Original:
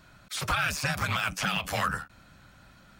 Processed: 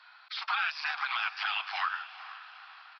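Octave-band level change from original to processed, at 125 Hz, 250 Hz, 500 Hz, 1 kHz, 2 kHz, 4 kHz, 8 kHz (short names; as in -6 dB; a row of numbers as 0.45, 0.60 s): under -40 dB, under -40 dB, -19.0 dB, -2.0 dB, -2.0 dB, -2.0 dB, under -25 dB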